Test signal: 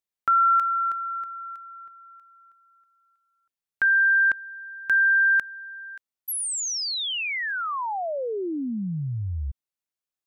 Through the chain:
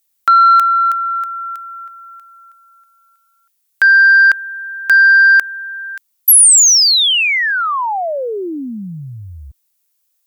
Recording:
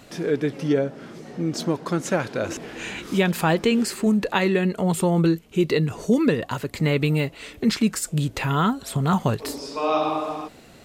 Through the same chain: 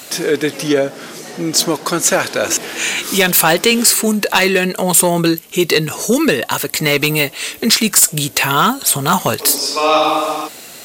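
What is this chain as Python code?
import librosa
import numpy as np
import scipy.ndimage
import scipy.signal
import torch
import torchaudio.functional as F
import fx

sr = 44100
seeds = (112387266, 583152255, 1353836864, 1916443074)

y = fx.riaa(x, sr, side='recording')
y = fx.cheby_harmonics(y, sr, harmonics=(5,), levels_db=(-8,), full_scale_db=-3.0)
y = y * 10.0 ** (1.5 / 20.0)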